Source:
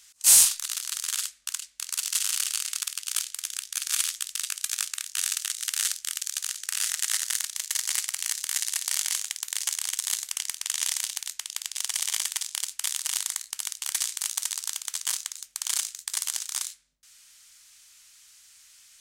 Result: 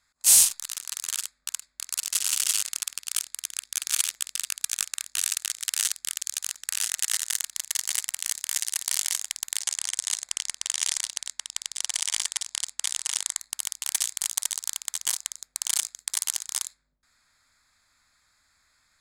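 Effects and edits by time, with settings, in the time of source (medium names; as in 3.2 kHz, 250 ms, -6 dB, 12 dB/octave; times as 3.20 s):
1.77–2.28 s: echo throw 340 ms, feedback 10%, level 0 dB
9.59–13.39 s: low-pass 10 kHz 24 dB/octave
whole clip: local Wiener filter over 15 samples; gain riding within 3 dB 2 s; dynamic bell 1.4 kHz, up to -4 dB, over -51 dBFS, Q 1.2; trim +1 dB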